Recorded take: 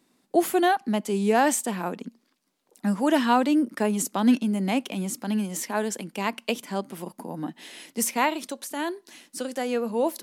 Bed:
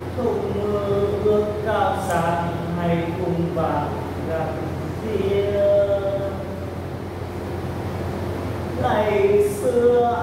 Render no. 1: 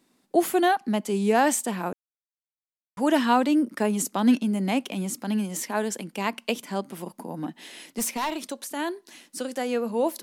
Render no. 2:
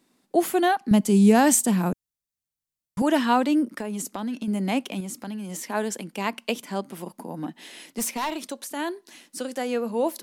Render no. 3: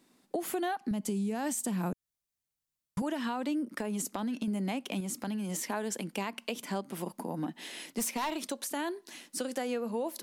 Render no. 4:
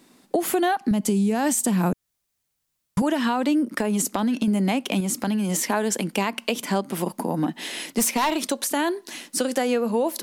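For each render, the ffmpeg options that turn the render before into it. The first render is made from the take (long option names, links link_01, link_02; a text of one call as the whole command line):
ffmpeg -i in.wav -filter_complex "[0:a]asettb=1/sr,asplit=3[link_01][link_02][link_03];[link_01]atrim=end=7.314[link_04];[link_02]atrim=start=7.31:end=8.47,asetpts=PTS-STARTPTS,afade=type=in:duration=0.004:curve=qsin,afade=type=out:start_time=1.156:duration=0.004:curve=qsin,asoftclip=type=hard:threshold=-23.5dB[link_05];[link_03]atrim=start=8.466[link_06];[link_04][link_05]acrossfade=duration=0.004:curve1=hsin:curve2=qsin[link_07];[link_07][link_06]acrossfade=duration=0.004:curve1=qsin:curve2=hsin,asplit=3[link_08][link_09][link_10];[link_08]atrim=end=1.93,asetpts=PTS-STARTPTS,afade=type=out:start_time=1.926:duration=0.004:curve=hsin[link_11];[link_09]atrim=start=1.93:end=2.97,asetpts=PTS-STARTPTS,volume=0[link_12];[link_10]atrim=start=2.97,asetpts=PTS-STARTPTS,afade=type=in:duration=0.004:curve=hsin[link_13];[link_11][link_12][link_13]concat=n=3:v=0:a=1" out.wav
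ffmpeg -i in.wav -filter_complex "[0:a]asettb=1/sr,asplit=3[link_01][link_02][link_03];[link_01]atrim=end=0.914[link_04];[link_02]atrim=start=0.91:end=3.02,asetpts=PTS-STARTPTS,afade=type=in:duration=0.004:curve=qsin,afade=type=out:start_time=2.106:duration=0.004:curve=qsin,bass=frequency=250:gain=15,treble=frequency=4000:gain=7[link_05];[link_03]atrim=start=3.016[link_06];[link_04][link_05]acrossfade=duration=0.004:curve1=hsin:curve2=qsin[link_07];[link_07][link_06]acrossfade=duration=0.004:curve1=qsin:curve2=hsin,asettb=1/sr,asplit=3[link_08][link_09][link_10];[link_08]atrim=end=3.754[link_11];[link_09]atrim=start=3.75:end=4.48,asetpts=PTS-STARTPTS,afade=type=in:duration=0.004:curve=qsin,afade=type=out:start_time=0.726:duration=0.004:curve=qsin,acompressor=threshold=-27dB:ratio=6:attack=3.2:release=140:knee=1:detection=peak[link_12];[link_10]atrim=start=4.476[link_13];[link_11][link_12]acrossfade=duration=0.004:curve1=hsin:curve2=qsin[link_14];[link_14][link_13]acrossfade=duration=0.004:curve1=qsin:curve2=hsin,asettb=1/sr,asplit=3[link_15][link_16][link_17];[link_15]atrim=end=5.004[link_18];[link_16]atrim=start=5:end=5.69,asetpts=PTS-STARTPTS,afade=type=in:duration=0.004:curve=qsin,afade=type=out:start_time=0.686:duration=0.004:curve=qsin,acompressor=threshold=-30dB:ratio=10:attack=3.2:release=140:knee=1:detection=peak[link_19];[link_17]atrim=start=5.686[link_20];[link_18][link_19]acrossfade=duration=0.004:curve1=hsin:curve2=qsin[link_21];[link_21][link_20]acrossfade=duration=0.004:curve1=qsin:curve2=hsin" out.wav
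ffmpeg -i in.wav -af "alimiter=limit=-17.5dB:level=0:latency=1:release=148,acompressor=threshold=-31dB:ratio=4" out.wav
ffmpeg -i in.wav -af "volume=11dB" out.wav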